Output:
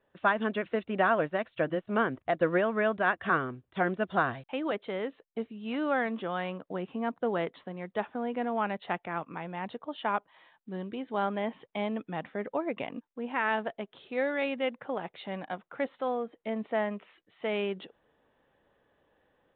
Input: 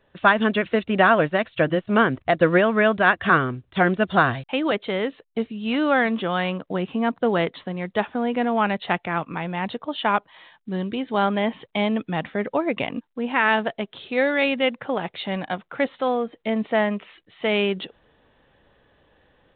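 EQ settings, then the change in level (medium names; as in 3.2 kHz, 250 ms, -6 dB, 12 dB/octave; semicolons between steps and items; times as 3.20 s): bass shelf 150 Hz -11 dB; treble shelf 2.8 kHz -12 dB; -7.0 dB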